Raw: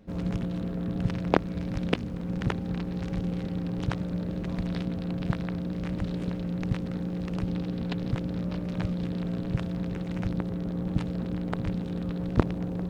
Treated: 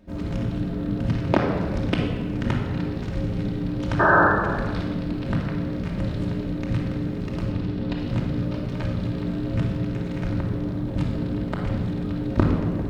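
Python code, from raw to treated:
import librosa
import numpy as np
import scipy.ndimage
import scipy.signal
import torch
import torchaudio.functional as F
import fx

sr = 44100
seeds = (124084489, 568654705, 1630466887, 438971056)

y = fx.spec_paint(x, sr, seeds[0], shape='noise', start_s=3.99, length_s=0.29, low_hz=300.0, high_hz=1800.0, level_db=-20.0)
y = fx.high_shelf(y, sr, hz=5200.0, db=-6.5, at=(7.5, 7.98))
y = fx.room_shoebox(y, sr, seeds[1], volume_m3=2000.0, walls='mixed', distance_m=2.7)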